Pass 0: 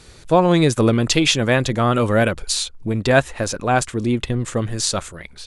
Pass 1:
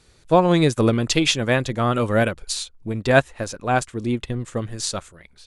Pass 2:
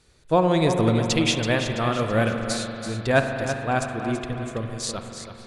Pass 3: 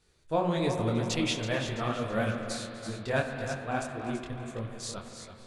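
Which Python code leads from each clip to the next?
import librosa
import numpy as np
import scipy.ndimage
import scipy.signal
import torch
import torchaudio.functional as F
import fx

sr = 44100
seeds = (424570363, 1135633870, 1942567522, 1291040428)

y1 = fx.upward_expand(x, sr, threshold_db=-32.0, expansion=1.5)
y2 = fx.echo_feedback(y1, sr, ms=331, feedback_pct=43, wet_db=-9.5)
y2 = fx.rev_spring(y2, sr, rt60_s=3.5, pass_ms=(44,), chirp_ms=50, drr_db=5.5)
y2 = y2 * 10.0 ** (-4.0 / 20.0)
y3 = y2 + 10.0 ** (-18.5 / 20.0) * np.pad(y2, (int(248 * sr / 1000.0), 0))[:len(y2)]
y3 = fx.detune_double(y3, sr, cents=60)
y3 = y3 * 10.0 ** (-4.5 / 20.0)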